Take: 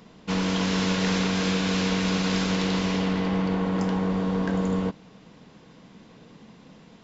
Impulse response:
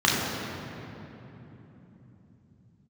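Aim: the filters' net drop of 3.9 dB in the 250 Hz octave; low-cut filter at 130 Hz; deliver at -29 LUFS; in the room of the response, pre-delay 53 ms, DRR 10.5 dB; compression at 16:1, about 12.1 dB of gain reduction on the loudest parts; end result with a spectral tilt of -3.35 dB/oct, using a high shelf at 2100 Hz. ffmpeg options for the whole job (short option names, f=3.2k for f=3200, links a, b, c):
-filter_complex "[0:a]highpass=130,equalizer=f=250:t=o:g=-5,highshelf=f=2.1k:g=7.5,acompressor=threshold=-33dB:ratio=16,asplit=2[a][b];[1:a]atrim=start_sample=2205,adelay=53[c];[b][c]afir=irnorm=-1:irlink=0,volume=-29dB[d];[a][d]amix=inputs=2:normalize=0,volume=8dB"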